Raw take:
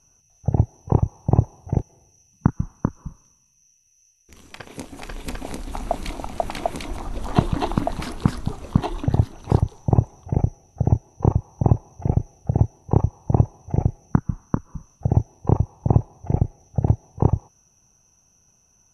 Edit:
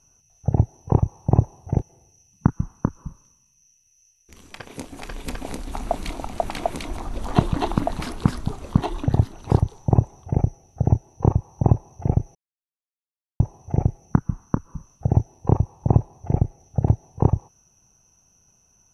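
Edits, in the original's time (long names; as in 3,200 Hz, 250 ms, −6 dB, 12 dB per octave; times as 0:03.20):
0:12.35–0:13.40: silence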